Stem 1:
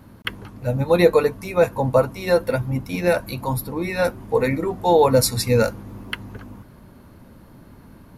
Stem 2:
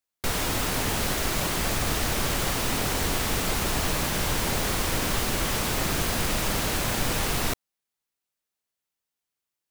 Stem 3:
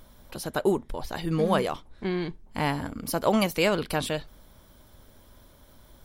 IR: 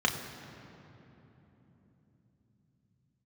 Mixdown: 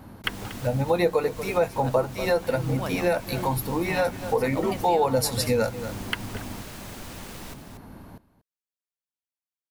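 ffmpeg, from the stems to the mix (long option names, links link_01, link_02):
-filter_complex "[0:a]equalizer=frequency=770:width_type=o:width=0.38:gain=6.5,bandreject=frequency=60:width_type=h:width=6,bandreject=frequency=120:width_type=h:width=6,bandreject=frequency=180:width_type=h:width=6,volume=1.5dB,asplit=2[link_01][link_02];[link_02]volume=-18dB[link_03];[1:a]volume=-15dB,asplit=2[link_04][link_05];[link_05]volume=-8dB[link_06];[2:a]adelay=1300,volume=-6dB[link_07];[link_03][link_06]amix=inputs=2:normalize=0,aecho=0:1:236:1[link_08];[link_01][link_04][link_07][link_08]amix=inputs=4:normalize=0,acompressor=threshold=-23dB:ratio=2.5"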